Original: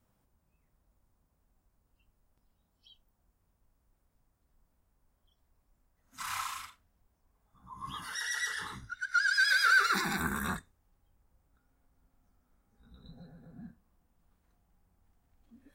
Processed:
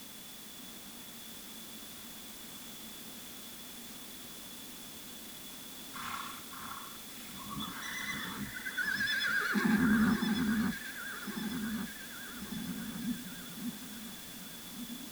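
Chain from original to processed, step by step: treble shelf 3.6 kHz -10 dB; peak limiter -24 dBFS, peak gain reduction 6.5 dB; in parallel at -7 dB: word length cut 6-bit, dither triangular; on the sum: small resonant body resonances 220/3300 Hz, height 17 dB, ringing for 45 ms; on a send: echo whose repeats swap between lows and highs 597 ms, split 1.8 kHz, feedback 71%, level -4 dB; on the sum: speed mistake 24 fps film run at 25 fps; trim -6 dB

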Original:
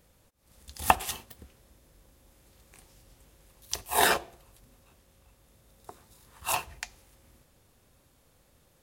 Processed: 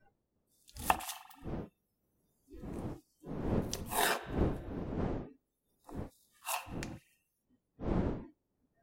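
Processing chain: wind noise 320 Hz -33 dBFS; spring tank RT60 1.7 s, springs 43 ms, chirp 50 ms, DRR 14.5 dB; spectral noise reduction 27 dB; trim -8 dB

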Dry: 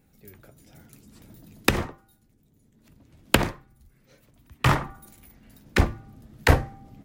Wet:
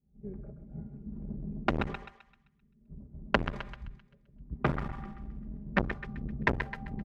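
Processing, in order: level-controlled noise filter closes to 540 Hz, open at -17 dBFS; RIAA curve playback; expander -37 dBFS; high-pass 45 Hz 12 dB/octave; compression 8:1, threshold -23 dBFS, peak gain reduction 24 dB; comb 5 ms, depth 93%; thinning echo 130 ms, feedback 45%, high-pass 760 Hz, level -5.5 dB; transformer saturation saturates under 1.2 kHz; trim +1 dB

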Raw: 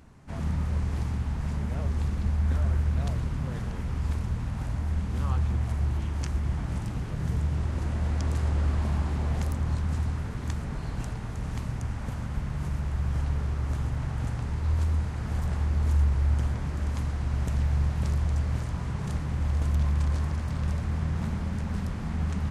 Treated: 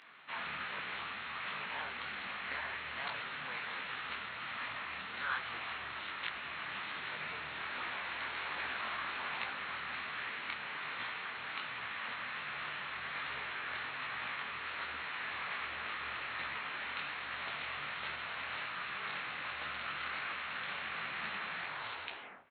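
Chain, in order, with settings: tape stop on the ending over 1.12 s; high-pass 1.5 kHz 12 dB/octave; in parallel at -0.5 dB: gain riding within 4 dB; on the sum: resampled via 8 kHz; distance through air 460 m; echo from a far wall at 250 m, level -27 dB; on a send at -22 dB: reverberation RT60 1.8 s, pre-delay 3 ms; on the sum: formant shift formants +4 st; detune thickener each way 44 cents; trim +11.5 dB

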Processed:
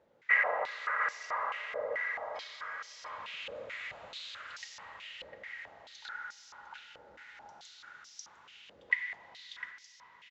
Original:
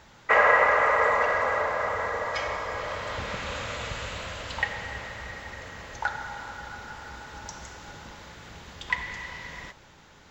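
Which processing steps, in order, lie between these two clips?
peaking EQ 840 Hz -9 dB 2.1 oct; on a send: delay 703 ms -5.5 dB; on the sum: step-sequenced band-pass 4.6 Hz 530–5500 Hz; trim +3 dB

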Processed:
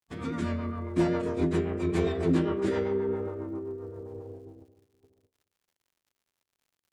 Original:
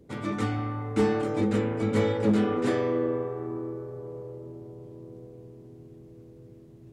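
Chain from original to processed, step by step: gate -40 dBFS, range -52 dB; formant-preserving pitch shift -4 st; rotary cabinet horn 7.5 Hz; crackle 120 per s -59 dBFS

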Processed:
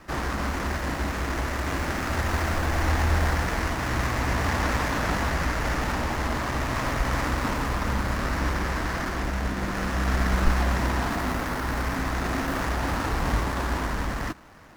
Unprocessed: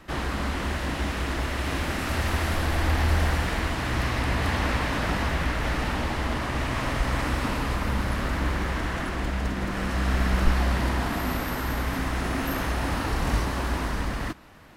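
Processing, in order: median filter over 15 samples; tilt shelf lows -3.5 dB; trim +3 dB

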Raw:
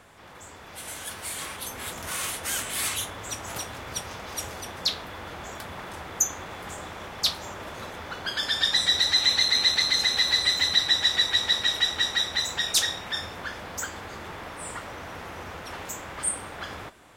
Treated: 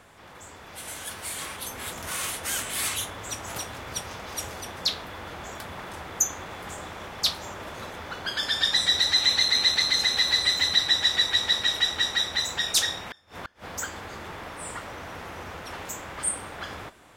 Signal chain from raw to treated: 13.06–13.68 s: inverted gate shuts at -25 dBFS, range -28 dB

